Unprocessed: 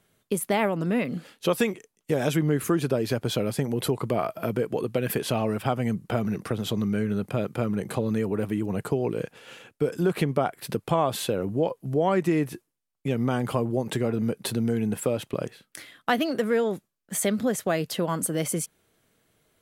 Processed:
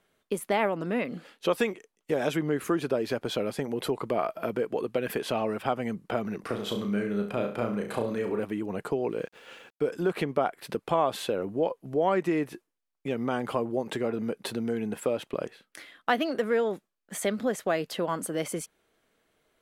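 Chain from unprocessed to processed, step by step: bell 110 Hz -12.5 dB 1.8 oct; 9.03–9.91 sample gate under -54 dBFS; high shelf 5200 Hz -10.5 dB; 6.4–8.4 flutter echo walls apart 5.9 m, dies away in 0.39 s

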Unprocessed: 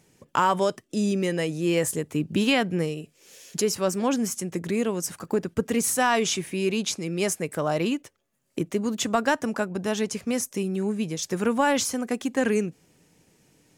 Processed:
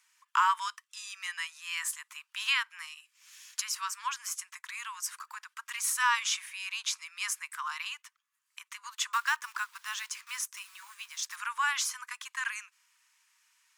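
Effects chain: 9.13–11.37 block floating point 5-bit; steep high-pass 970 Hz 96 dB/oct; tilt -1.5 dB/oct

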